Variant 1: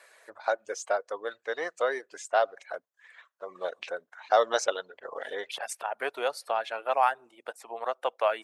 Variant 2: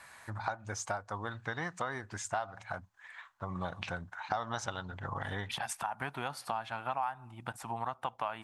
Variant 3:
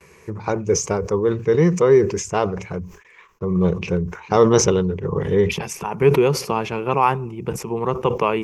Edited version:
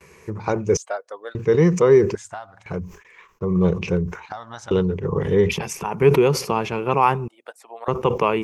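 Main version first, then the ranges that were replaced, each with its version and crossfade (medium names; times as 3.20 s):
3
0.77–1.35 s: from 1
2.15–2.66 s: from 2
4.26–4.71 s: from 2
7.28–7.88 s: from 1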